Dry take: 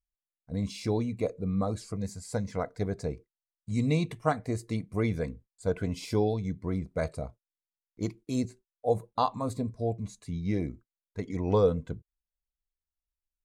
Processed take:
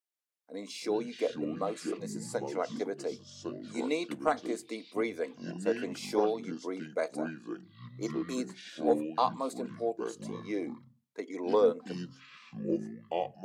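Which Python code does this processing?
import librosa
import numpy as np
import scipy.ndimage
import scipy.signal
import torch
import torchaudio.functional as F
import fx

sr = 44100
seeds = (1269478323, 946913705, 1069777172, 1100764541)

y = scipy.signal.sosfilt(scipy.signal.butter(6, 280.0, 'highpass', fs=sr, output='sos'), x)
y = fx.echo_pitch(y, sr, ms=134, semitones=-6, count=2, db_per_echo=-6.0)
y = 10.0 ** (-11.5 / 20.0) * np.tanh(y / 10.0 ** (-11.5 / 20.0))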